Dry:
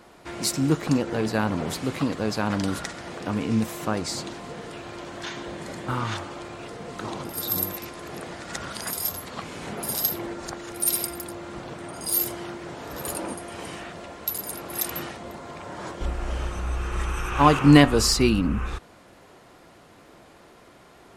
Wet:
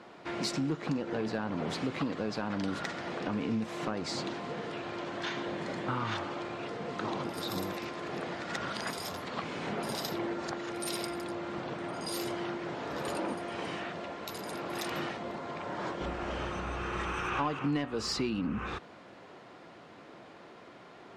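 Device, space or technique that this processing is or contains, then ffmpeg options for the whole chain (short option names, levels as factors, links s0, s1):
AM radio: -af "highpass=130,lowpass=4300,acompressor=threshold=0.0398:ratio=6,asoftclip=type=tanh:threshold=0.0891"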